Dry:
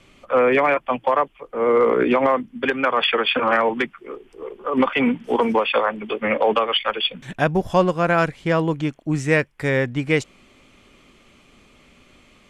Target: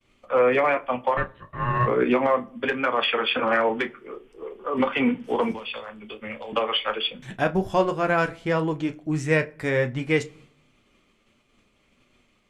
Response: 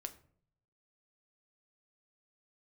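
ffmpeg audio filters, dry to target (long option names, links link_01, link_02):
-filter_complex "[0:a]asplit=3[link_01][link_02][link_03];[link_01]afade=type=out:start_time=1.16:duration=0.02[link_04];[link_02]aeval=exprs='val(0)*sin(2*PI*610*n/s)':channel_layout=same,afade=type=in:start_time=1.16:duration=0.02,afade=type=out:start_time=1.86:duration=0.02[link_05];[link_03]afade=type=in:start_time=1.86:duration=0.02[link_06];[link_04][link_05][link_06]amix=inputs=3:normalize=0,asettb=1/sr,asplit=3[link_07][link_08][link_09];[link_07]atrim=end=5.514[link_10];[link_08]atrim=start=5.51:end=6.53,asetpts=PTS-STARTPTS,afade=type=in:duration=0.004:curve=qsin,afade=type=out:start_time=1.016:duration=0.004:curve=qsin,acrossover=split=130|3000[link_11][link_12][link_13];[link_12]acompressor=threshold=-40dB:ratio=2.5[link_14];[link_11][link_14][link_13]amix=inputs=3:normalize=0[link_15];[link_09]atrim=start=6.526[link_16];[link_10][link_15]acrossfade=duration=0.004:curve1=hsin:curve2=qsin[link_17];[link_17][link_16]acrossfade=duration=0.004:curve1=qsin:curve2=hsin,flanger=delay=8.3:depth=1.7:regen=-44:speed=1.4:shape=sinusoidal,agate=range=-33dB:threshold=-49dB:ratio=3:detection=peak,asplit=2[link_18][link_19];[1:a]atrim=start_sample=2205,highshelf=frequency=5100:gain=-9,adelay=32[link_20];[link_19][link_20]afir=irnorm=-1:irlink=0,volume=-7.5dB[link_21];[link_18][link_21]amix=inputs=2:normalize=0"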